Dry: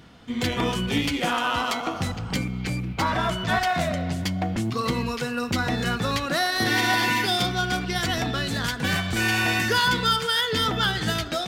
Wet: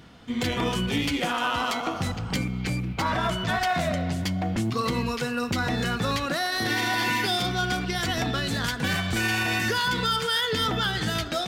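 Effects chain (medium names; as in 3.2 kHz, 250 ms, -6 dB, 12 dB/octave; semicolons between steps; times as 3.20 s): peak limiter -16 dBFS, peak gain reduction 5 dB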